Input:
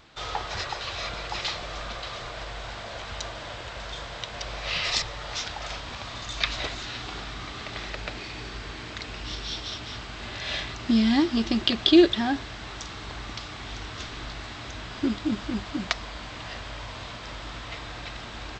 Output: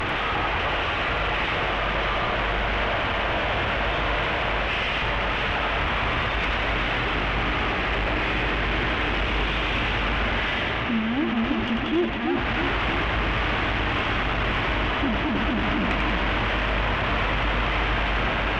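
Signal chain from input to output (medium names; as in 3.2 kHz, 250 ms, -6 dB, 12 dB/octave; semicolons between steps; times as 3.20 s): one-bit delta coder 16 kbps, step -18 dBFS; gain riding 0.5 s; valve stage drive 16 dB, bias 0.35; two-band feedback delay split 650 Hz, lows 322 ms, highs 93 ms, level -4.5 dB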